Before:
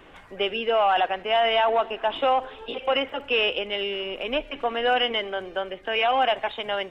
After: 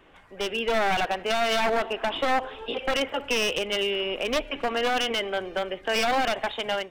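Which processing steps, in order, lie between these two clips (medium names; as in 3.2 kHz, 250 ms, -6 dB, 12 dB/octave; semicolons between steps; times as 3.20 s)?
one-sided wavefolder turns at -22 dBFS; level rider gain up to 9.5 dB; peak limiter -8 dBFS, peak gain reduction 4.5 dB; trim -6.5 dB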